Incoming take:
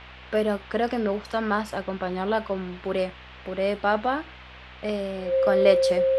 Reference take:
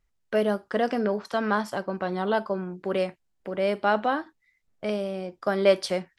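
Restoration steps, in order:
hum removal 63.1 Hz, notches 14
notch filter 530 Hz, Q 30
noise reduction from a noise print 27 dB

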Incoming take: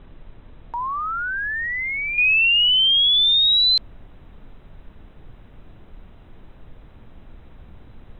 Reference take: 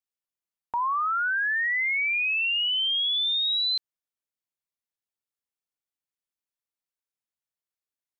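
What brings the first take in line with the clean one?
noise reduction from a noise print 30 dB
level 0 dB, from 0:02.18 −9 dB

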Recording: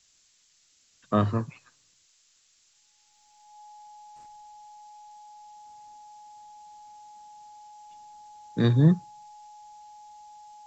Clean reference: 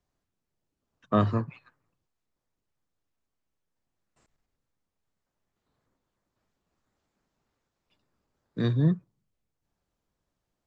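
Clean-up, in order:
notch filter 840 Hz, Q 30
noise reduction from a noise print 19 dB
level 0 dB, from 0:03.08 −4.5 dB

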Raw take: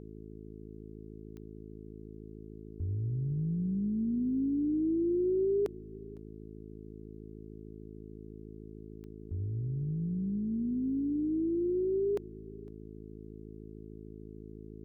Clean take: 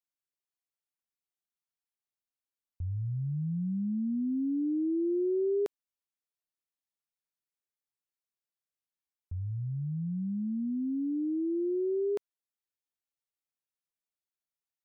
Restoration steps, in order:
click removal
hum removal 53.6 Hz, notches 8
echo removal 507 ms −22 dB

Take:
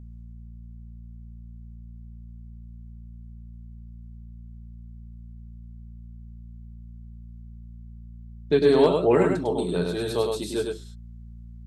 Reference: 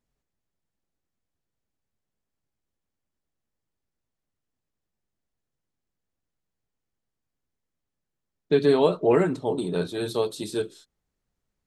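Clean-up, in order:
clipped peaks rebuilt −8.5 dBFS
hum removal 57.6 Hz, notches 4
echo removal 102 ms −4 dB

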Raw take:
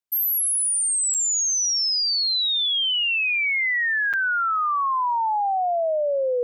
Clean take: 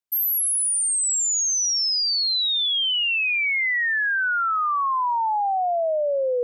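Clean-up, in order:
repair the gap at 0:01.14/0:04.13, 6.7 ms

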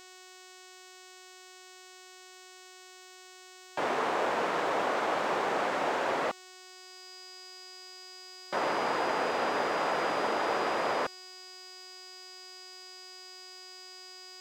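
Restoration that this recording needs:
clipped peaks rebuilt −20.5 dBFS
hum removal 369.8 Hz, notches 22
notch filter 4,900 Hz, Q 30
downward expander −44 dBFS, range −21 dB

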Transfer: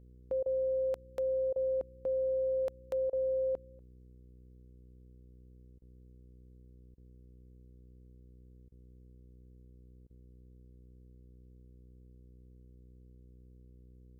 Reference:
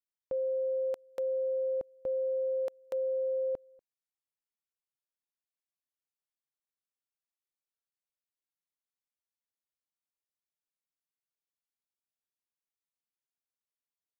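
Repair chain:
hum removal 62 Hz, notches 8
repair the gap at 0:00.43/0:01.53/0:03.10/0:05.79/0:06.95/0:08.69/0:10.07, 28 ms

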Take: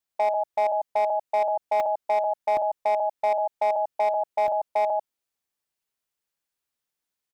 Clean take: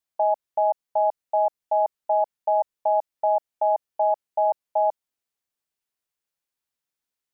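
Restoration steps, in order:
clipped peaks rebuilt −17.5 dBFS
repair the gap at 0:01.80/0:02.57/0:04.48, 1.3 ms
echo removal 94 ms −4.5 dB

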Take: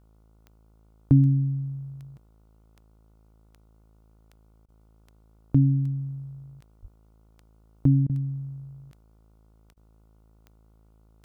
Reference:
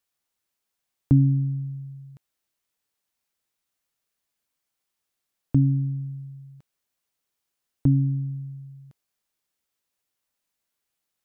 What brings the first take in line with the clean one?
click removal
hum removal 54.2 Hz, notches 27
0:06.81–0:06.93: high-pass filter 140 Hz 24 dB per octave
repair the gap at 0:04.66/0:08.07/0:09.74, 24 ms

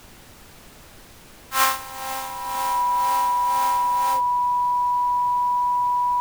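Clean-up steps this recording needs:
notch filter 980 Hz, Q 30
noise reduction from a noise print 24 dB

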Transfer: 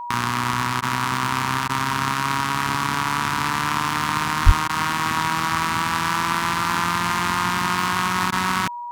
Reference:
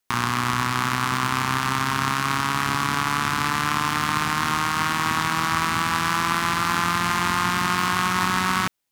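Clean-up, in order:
notch filter 960 Hz, Q 30
high-pass at the plosives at 0:04.45
repair the gap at 0:00.81/0:01.68/0:04.68/0:08.31, 11 ms

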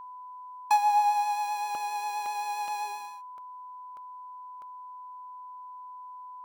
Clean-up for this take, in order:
notch filter 1,000 Hz, Q 30
repair the gap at 0:01.75/0:02.26/0:02.68/0:03.38/0:03.97/0:04.62, 1.2 ms

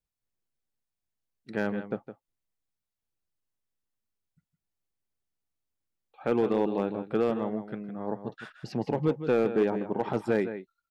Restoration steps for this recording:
clipped peaks rebuilt −17 dBFS
echo removal 161 ms −11 dB

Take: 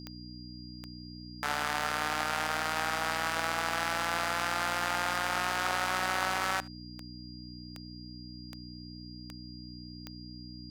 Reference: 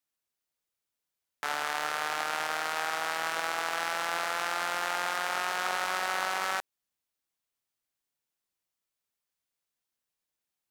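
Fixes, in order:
click removal
hum removal 60.9 Hz, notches 5
notch filter 4,800 Hz, Q 30
echo removal 75 ms −24 dB

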